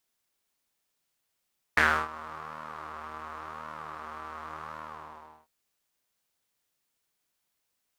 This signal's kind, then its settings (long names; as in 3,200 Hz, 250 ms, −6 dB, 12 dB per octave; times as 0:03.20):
subtractive patch with pulse-width modulation D#2, noise −10.5 dB, filter bandpass, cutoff 890 Hz, Q 4.5, filter envelope 1 octave, attack 4.7 ms, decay 0.30 s, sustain −22 dB, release 0.70 s, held 3.00 s, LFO 0.91 Hz, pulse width 38%, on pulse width 19%